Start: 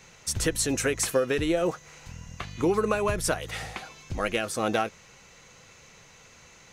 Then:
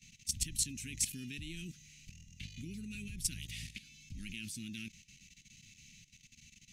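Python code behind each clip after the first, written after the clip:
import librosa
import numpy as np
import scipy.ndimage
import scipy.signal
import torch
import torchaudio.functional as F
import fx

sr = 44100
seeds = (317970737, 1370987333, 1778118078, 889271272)

y = scipy.signal.sosfilt(scipy.signal.ellip(3, 1.0, 50, [240.0, 2500.0], 'bandstop', fs=sr, output='sos'), x)
y = fx.level_steps(y, sr, step_db=14)
y = F.gain(torch.from_numpy(y), -2.0).numpy()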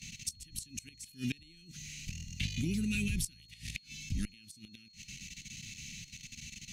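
y = fx.gate_flip(x, sr, shuts_db=-33.0, range_db=-27)
y = y + 10.0 ** (-71.0 / 20.0) * np.sin(2.0 * np.pi * 4300.0 * np.arange(len(y)) / sr)
y = fx.cheby_harmonics(y, sr, harmonics=(5, 7), levels_db=(-28, -37), full_scale_db=-31.5)
y = F.gain(torch.from_numpy(y), 11.0).numpy()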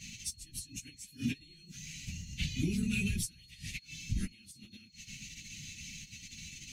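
y = fx.phase_scramble(x, sr, seeds[0], window_ms=50)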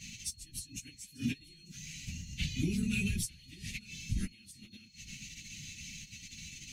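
y = x + 10.0 ** (-23.5 / 20.0) * np.pad(x, (int(893 * sr / 1000.0), 0))[:len(x)]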